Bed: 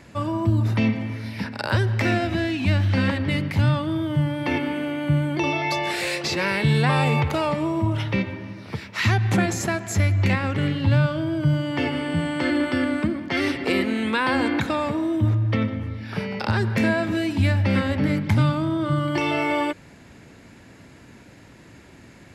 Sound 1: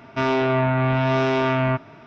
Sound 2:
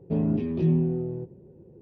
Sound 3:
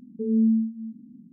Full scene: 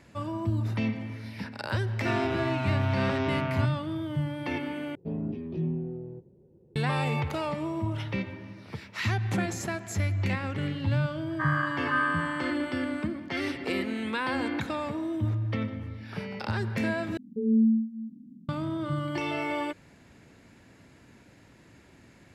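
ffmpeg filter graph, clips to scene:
-filter_complex "[2:a]asplit=2[a][b];[0:a]volume=-8dB[c];[b]aeval=exprs='val(0)*sin(2*PI*1400*n/s)':c=same[d];[c]asplit=3[e][f][g];[e]atrim=end=4.954[h];[a]atrim=end=1.81,asetpts=PTS-STARTPTS,volume=-8dB[i];[f]atrim=start=6.756:end=17.174[j];[3:a]atrim=end=1.32,asetpts=PTS-STARTPTS,volume=-1.5dB[k];[g]atrim=start=18.486[l];[1:a]atrim=end=2.06,asetpts=PTS-STARTPTS,volume=-10dB,afade=t=in:d=0.004:c=hsin,afade=t=out:st=2.056:d=0.004:c=hsin,adelay=1890[m];[d]atrim=end=1.81,asetpts=PTS-STARTPTS,volume=-2.5dB,afade=t=in:d=0.004:c=hsin,afade=t=out:st=1.806:d=0.004:c=hsin,adelay=11290[n];[h][i]acrossfade=d=0.004:c1=hsin:c2=hsin[o];[o][j]acrossfade=d=0.004:c1=hsin:c2=hsin[p];[p][k]acrossfade=d=0.004:c1=hsin:c2=hsin[q];[q][l]acrossfade=d=0.004:c1=hsin:c2=hsin[r];[r][m][n]amix=inputs=3:normalize=0"

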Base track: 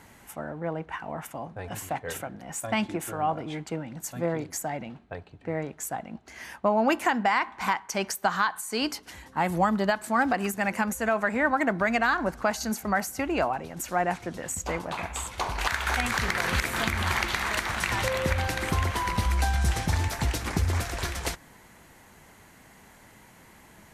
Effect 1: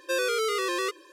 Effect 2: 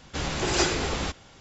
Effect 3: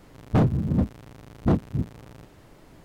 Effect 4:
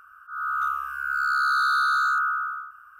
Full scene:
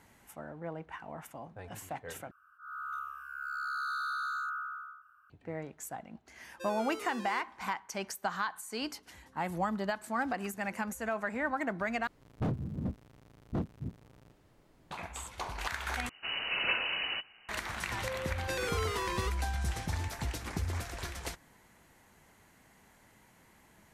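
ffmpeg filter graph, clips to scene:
-filter_complex "[1:a]asplit=2[a][b];[0:a]volume=-9dB[c];[4:a]highpass=47[d];[2:a]lowpass=f=2.6k:t=q:w=0.5098,lowpass=f=2.6k:t=q:w=0.6013,lowpass=f=2.6k:t=q:w=0.9,lowpass=f=2.6k:t=q:w=2.563,afreqshift=-3000[e];[c]asplit=4[f][g][h][i];[f]atrim=end=2.314[j];[d]atrim=end=2.99,asetpts=PTS-STARTPTS,volume=-13.5dB[k];[g]atrim=start=5.296:end=12.074[l];[3:a]atrim=end=2.84,asetpts=PTS-STARTPTS,volume=-13dB[m];[h]atrim=start=14.906:end=16.094[n];[e]atrim=end=1.4,asetpts=PTS-STARTPTS,volume=-6dB[o];[i]atrim=start=17.486[p];[a]atrim=end=1.12,asetpts=PTS-STARTPTS,volume=-17dB,afade=t=in:d=0.004:c=hsin,afade=t=out:st=1.116:d=0.004:c=hsin,adelay=6510[q];[b]atrim=end=1.12,asetpts=PTS-STARTPTS,volume=-9dB,afade=t=in:d=0.004:c=hsin,afade=t=out:st=1.116:d=0.004:c=hsin,adelay=18390[r];[j][k]acrossfade=d=0.004:c1=hsin:c2=hsin[s];[s][l]acrossfade=d=0.004:c1=hsin:c2=hsin[t];[t][m]acrossfade=d=0.004:c1=hsin:c2=hsin[u];[u][n]acrossfade=d=0.004:c1=hsin:c2=hsin[v];[v][o]acrossfade=d=0.004:c1=hsin:c2=hsin[w];[w][p]acrossfade=d=0.004:c1=hsin:c2=hsin[x];[x][q][r]amix=inputs=3:normalize=0"

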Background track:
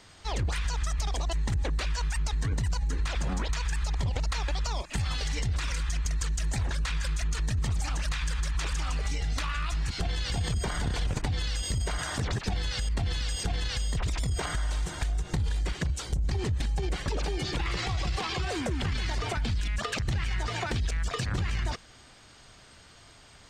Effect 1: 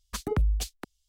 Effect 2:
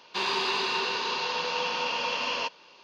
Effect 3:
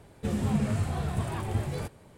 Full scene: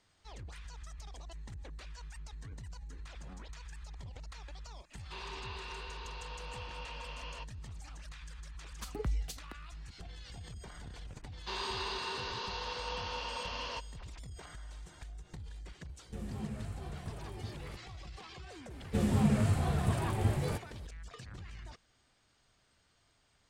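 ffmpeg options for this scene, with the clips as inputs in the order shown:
-filter_complex "[2:a]asplit=2[a][b];[3:a]asplit=2[c][d];[0:a]volume=-18dB[e];[a]acrossover=split=4300[f][g];[g]acompressor=threshold=-48dB:ratio=4:attack=1:release=60[h];[f][h]amix=inputs=2:normalize=0[i];[b]equalizer=f=2.5k:t=o:w=0.24:g=-6.5[j];[i]atrim=end=2.83,asetpts=PTS-STARTPTS,volume=-16.5dB,afade=t=in:d=0.004:c=hsin,afade=t=out:st=2.826:d=0.004:c=hsin,adelay=4960[k];[1:a]atrim=end=1.08,asetpts=PTS-STARTPTS,volume=-10dB,afade=t=in:d=0.004:c=hsin,afade=t=out:st=1.076:d=0.004:c=hsin,adelay=8680[l];[j]atrim=end=2.83,asetpts=PTS-STARTPTS,volume=-9.5dB,afade=t=in:d=0.004:c=hsin,afade=t=out:st=2.826:d=0.004:c=hsin,adelay=11320[m];[c]atrim=end=2.17,asetpts=PTS-STARTPTS,volume=-14dB,afade=t=in:d=0.004:c=hsin,afade=t=out:st=2.166:d=0.004:c=hsin,adelay=15890[n];[d]atrim=end=2.17,asetpts=PTS-STARTPTS,volume=-0.5dB,afade=t=in:d=0.004:c=hsin,afade=t=out:st=2.166:d=0.004:c=hsin,adelay=18700[o];[e][k][l][m][n][o]amix=inputs=6:normalize=0"

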